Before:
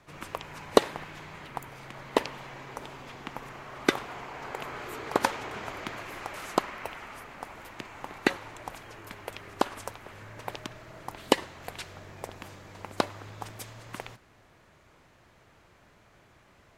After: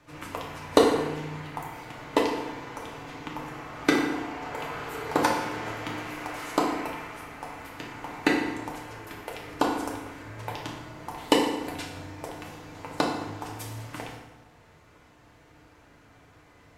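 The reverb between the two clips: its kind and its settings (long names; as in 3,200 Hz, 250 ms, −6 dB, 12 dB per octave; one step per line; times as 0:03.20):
feedback delay network reverb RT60 1.1 s, low-frequency decay 1.25×, high-frequency decay 0.75×, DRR −2.5 dB
level −1.5 dB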